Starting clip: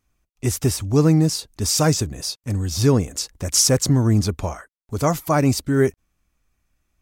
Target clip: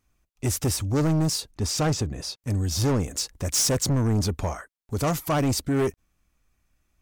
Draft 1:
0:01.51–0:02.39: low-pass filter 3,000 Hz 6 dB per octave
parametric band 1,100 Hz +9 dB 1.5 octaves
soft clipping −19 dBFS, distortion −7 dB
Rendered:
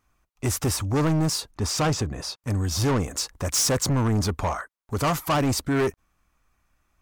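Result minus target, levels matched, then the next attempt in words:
1,000 Hz band +3.5 dB
0:01.51–0:02.39: low-pass filter 3,000 Hz 6 dB per octave
soft clipping −19 dBFS, distortion −8 dB

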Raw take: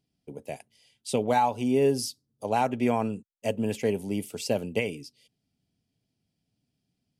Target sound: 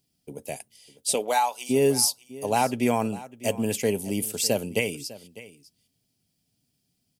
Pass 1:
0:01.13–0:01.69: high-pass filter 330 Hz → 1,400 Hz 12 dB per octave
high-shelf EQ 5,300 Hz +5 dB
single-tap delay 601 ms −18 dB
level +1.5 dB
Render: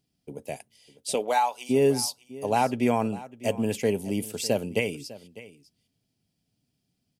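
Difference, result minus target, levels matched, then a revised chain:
8,000 Hz band −6.0 dB
0:01.13–0:01.69: high-pass filter 330 Hz → 1,400 Hz 12 dB per octave
high-shelf EQ 5,300 Hz +15.5 dB
single-tap delay 601 ms −18 dB
level +1.5 dB

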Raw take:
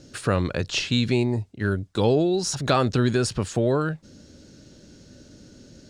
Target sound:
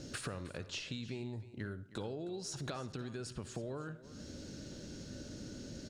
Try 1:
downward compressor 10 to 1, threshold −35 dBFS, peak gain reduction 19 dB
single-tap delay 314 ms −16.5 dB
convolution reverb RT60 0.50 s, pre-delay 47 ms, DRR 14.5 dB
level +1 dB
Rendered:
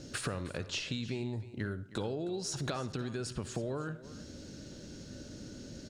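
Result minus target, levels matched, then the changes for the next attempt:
downward compressor: peak gain reduction −5.5 dB
change: downward compressor 10 to 1, threshold −41 dBFS, peak gain reduction 24.5 dB

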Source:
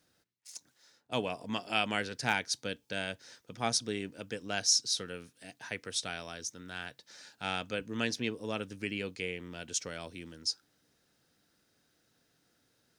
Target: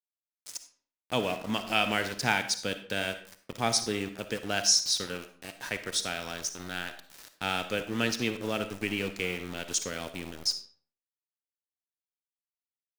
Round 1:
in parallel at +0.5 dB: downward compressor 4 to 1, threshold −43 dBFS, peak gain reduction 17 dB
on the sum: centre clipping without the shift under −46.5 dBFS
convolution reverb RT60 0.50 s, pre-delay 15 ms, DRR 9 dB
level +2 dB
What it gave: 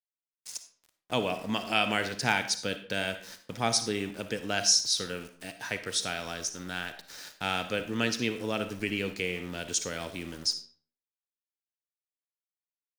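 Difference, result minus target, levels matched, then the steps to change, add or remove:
centre clipping without the shift: distortion −7 dB
change: centre clipping without the shift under −39.5 dBFS

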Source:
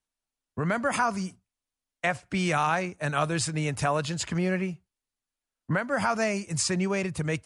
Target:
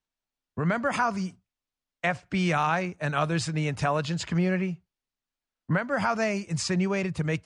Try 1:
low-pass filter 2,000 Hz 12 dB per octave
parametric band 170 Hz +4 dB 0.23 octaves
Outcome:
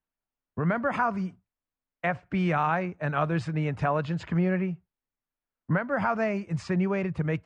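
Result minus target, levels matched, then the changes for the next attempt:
8,000 Hz band −17.0 dB
change: low-pass filter 5,800 Hz 12 dB per octave

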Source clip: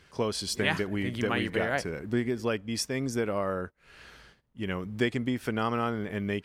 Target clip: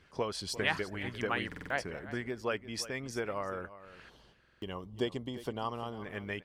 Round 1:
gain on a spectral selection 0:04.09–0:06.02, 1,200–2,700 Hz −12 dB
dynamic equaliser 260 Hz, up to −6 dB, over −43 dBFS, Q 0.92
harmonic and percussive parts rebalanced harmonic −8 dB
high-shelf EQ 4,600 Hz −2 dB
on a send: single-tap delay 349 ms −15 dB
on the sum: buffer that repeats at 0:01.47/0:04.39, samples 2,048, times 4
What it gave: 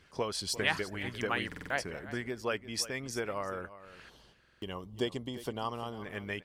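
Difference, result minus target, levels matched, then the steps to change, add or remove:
8,000 Hz band +4.0 dB
change: high-shelf EQ 4,600 Hz −9 dB

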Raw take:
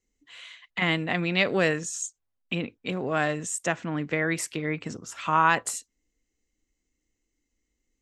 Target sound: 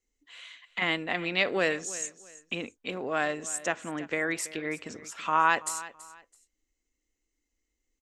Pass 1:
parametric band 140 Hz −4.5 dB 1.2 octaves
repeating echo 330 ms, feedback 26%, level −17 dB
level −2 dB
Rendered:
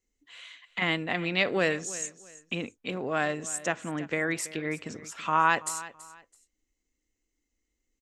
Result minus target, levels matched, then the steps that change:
125 Hz band +5.5 dB
change: parametric band 140 Hz −12 dB 1.2 octaves

